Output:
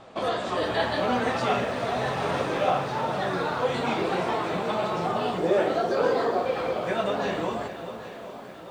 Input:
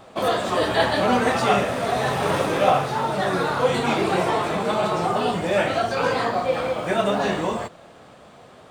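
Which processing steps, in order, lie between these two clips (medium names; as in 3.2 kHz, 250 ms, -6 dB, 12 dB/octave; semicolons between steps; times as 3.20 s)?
low-pass 6.4 kHz 12 dB/octave; hum notches 50/100/150/200 Hz; in parallel at -1 dB: compression, threshold -30 dBFS, peak gain reduction 16.5 dB; 5.38–6.46 s: on the sum: fifteen-band graphic EQ 100 Hz -11 dB, 400 Hz +12 dB, 2.5 kHz -7 dB; on a send: echo whose repeats swap between lows and highs 398 ms, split 1 kHz, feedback 73%, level -11.5 dB; on the sum: bit-crushed delay 416 ms, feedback 55%, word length 7-bit, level -13.5 dB; trim -7.5 dB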